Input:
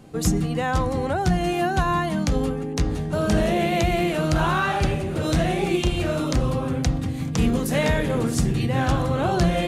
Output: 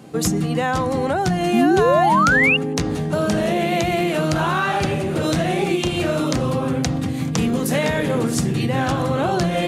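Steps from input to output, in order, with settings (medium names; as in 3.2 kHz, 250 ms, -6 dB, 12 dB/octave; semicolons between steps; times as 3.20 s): high-pass 130 Hz 12 dB/octave; compression, threshold -22 dBFS, peak gain reduction 6 dB; painted sound rise, 1.53–2.57 s, 210–2900 Hz -22 dBFS; trim +6 dB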